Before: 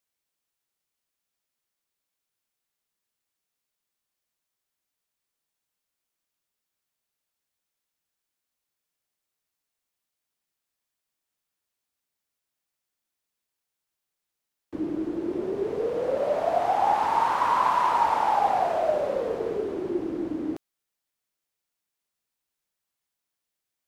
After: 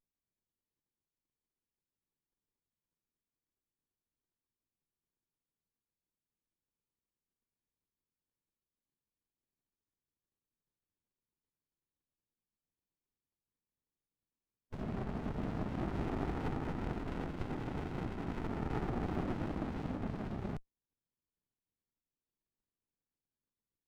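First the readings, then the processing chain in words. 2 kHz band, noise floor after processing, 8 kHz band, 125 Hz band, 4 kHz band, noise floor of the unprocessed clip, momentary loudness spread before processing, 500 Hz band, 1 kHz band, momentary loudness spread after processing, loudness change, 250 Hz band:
-12.5 dB, under -85 dBFS, n/a, +7.5 dB, -13.0 dB, -85 dBFS, 9 LU, -17.5 dB, -22.5 dB, 4 LU, -14.0 dB, -6.5 dB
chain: treble ducked by the level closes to 540 Hz, closed at -20 dBFS; spectral gate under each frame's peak -10 dB weak; running maximum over 65 samples; gain +3.5 dB

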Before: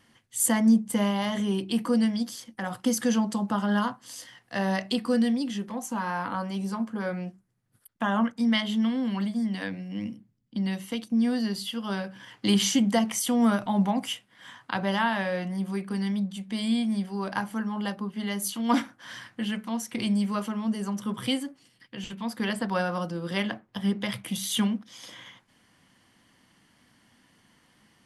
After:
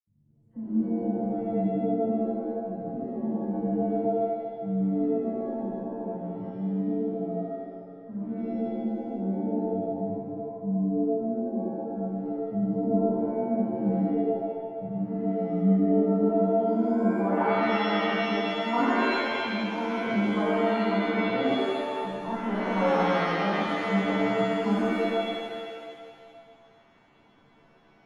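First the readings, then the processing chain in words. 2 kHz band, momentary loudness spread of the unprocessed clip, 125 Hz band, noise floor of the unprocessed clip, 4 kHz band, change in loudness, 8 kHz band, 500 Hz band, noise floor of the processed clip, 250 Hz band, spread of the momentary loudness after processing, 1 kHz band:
+1.0 dB, 12 LU, +1.0 dB, -65 dBFS, -6.0 dB, +0.5 dB, under -20 dB, +7.0 dB, -59 dBFS, -0.5 dB, 10 LU, +2.5 dB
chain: dispersion lows, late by 74 ms, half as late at 950 Hz; low-pass sweep 140 Hz -> 830 Hz, 15.17–17.2; shimmer reverb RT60 1.8 s, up +7 st, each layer -2 dB, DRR -7.5 dB; gain -8.5 dB

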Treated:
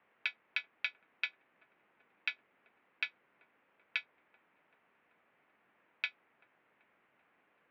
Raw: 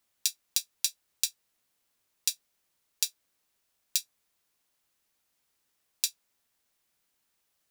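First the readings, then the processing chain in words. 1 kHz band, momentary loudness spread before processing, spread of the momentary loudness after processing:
n/a, 2 LU, 2 LU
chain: dark delay 0.385 s, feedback 61%, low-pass 510 Hz, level -8 dB; mistuned SSB -130 Hz 330–2500 Hz; gain +13.5 dB

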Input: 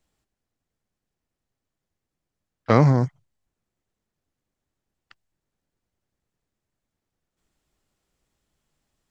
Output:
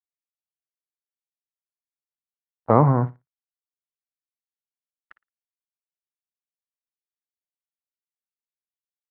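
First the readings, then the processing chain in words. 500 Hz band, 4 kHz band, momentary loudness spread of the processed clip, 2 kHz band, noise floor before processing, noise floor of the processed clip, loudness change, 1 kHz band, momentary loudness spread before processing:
+1.0 dB, under -20 dB, 9 LU, -8.0 dB, -85 dBFS, under -85 dBFS, 0.0 dB, +4.0 dB, 15 LU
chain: bit-crush 9-bit; low-pass sweep 700 Hz -> 1600 Hz, 2.48–3.21; on a send: flutter echo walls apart 9.7 m, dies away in 0.21 s; on the sum: gain -1.5 dB

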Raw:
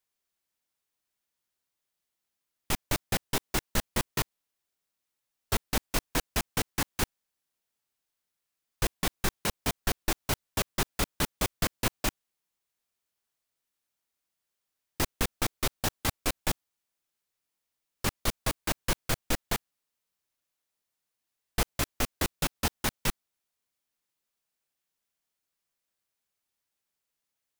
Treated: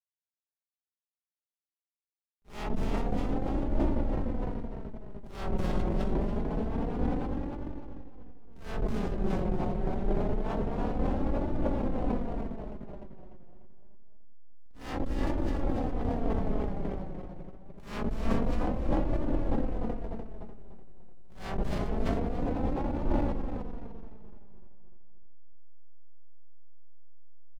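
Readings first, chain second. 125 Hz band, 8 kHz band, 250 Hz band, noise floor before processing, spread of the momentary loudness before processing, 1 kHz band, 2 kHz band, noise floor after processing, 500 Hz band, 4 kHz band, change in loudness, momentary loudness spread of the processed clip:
+3.0 dB, under -25 dB, +6.5 dB, -85 dBFS, 4 LU, -1.0 dB, -11.0 dB, under -85 dBFS, +4.5 dB, -17.0 dB, -1.5 dB, 15 LU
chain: spectral swells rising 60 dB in 0.52 s; LPF 7300 Hz 12 dB/oct; bell 120 Hz -2 dB 1.2 oct; treble ducked by the level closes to 470 Hz, closed at -26.5 dBFS; in parallel at -2 dB: compressor, threshold -38 dBFS, peak gain reduction 16 dB; on the sum: dynamic EQ 730 Hz, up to +4 dB, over -47 dBFS, Q 1.5; on a send: echo 0.379 s -7 dB; on the sum: backlash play -37.5 dBFS; feedback echo 0.297 s, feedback 52%, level -4 dB; flange 0.26 Hz, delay 3.3 ms, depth 2.3 ms, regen +27%; sustainer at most 28 dB/s

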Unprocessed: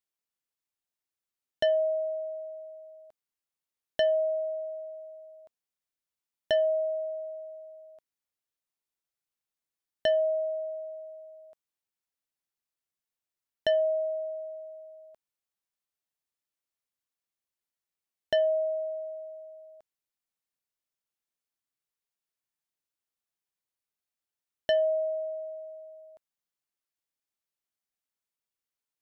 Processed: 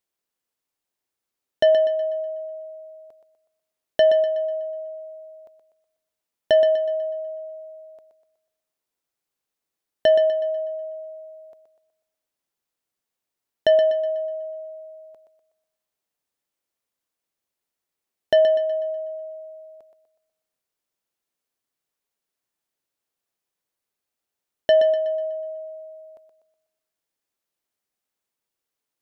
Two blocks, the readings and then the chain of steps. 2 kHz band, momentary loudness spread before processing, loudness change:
+6.0 dB, 20 LU, +8.0 dB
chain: bell 430 Hz +5.5 dB 2.2 oct; on a send: thinning echo 0.123 s, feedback 43%, high-pass 220 Hz, level -8 dB; on the sum: gain +4.5 dB

